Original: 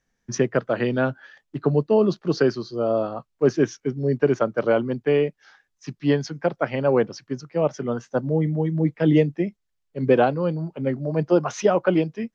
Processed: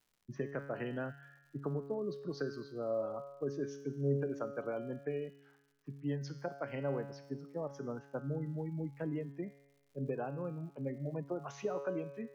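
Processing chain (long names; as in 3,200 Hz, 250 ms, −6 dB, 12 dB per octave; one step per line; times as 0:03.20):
gate on every frequency bin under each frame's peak −30 dB strong
low-pass that shuts in the quiet parts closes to 870 Hz, open at −16 dBFS
downward compressor, threshold −21 dBFS, peak gain reduction 9.5 dB
tuned comb filter 140 Hz, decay 1.1 s, harmonics all, mix 80%
surface crackle 180 per second −59 dBFS
level −1 dB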